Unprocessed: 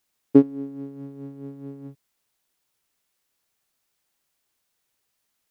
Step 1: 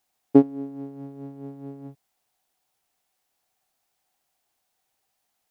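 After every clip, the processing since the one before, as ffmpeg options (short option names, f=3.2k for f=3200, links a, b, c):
-af "equalizer=f=750:t=o:w=0.38:g=13,volume=-1dB"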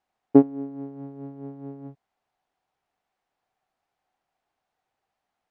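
-af "lowpass=1.3k,crystalizer=i=5.5:c=0"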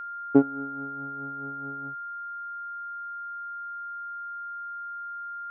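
-af "aeval=exprs='val(0)+0.0316*sin(2*PI*1400*n/s)':c=same,volume=-4dB"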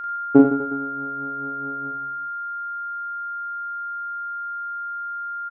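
-af "aecho=1:1:40|92|159.6|247.5|361.7:0.631|0.398|0.251|0.158|0.1,volume=4.5dB"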